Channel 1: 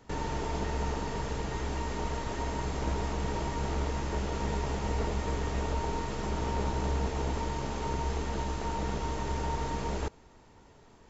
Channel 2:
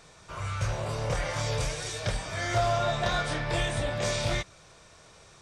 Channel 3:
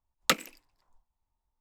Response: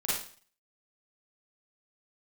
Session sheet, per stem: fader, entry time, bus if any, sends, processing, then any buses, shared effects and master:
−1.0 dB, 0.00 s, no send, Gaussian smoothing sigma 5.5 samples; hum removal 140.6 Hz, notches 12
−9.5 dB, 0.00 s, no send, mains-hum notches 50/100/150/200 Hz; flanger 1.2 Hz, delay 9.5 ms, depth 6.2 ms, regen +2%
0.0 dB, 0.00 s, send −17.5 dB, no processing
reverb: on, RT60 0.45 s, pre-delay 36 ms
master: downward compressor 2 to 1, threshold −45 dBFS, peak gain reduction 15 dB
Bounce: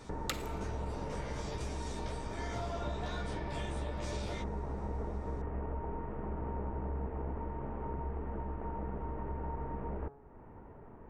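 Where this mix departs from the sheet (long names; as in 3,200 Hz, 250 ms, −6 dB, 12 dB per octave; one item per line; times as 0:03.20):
stem 1 −1.0 dB → +6.0 dB
stem 2 −9.5 dB → 0.0 dB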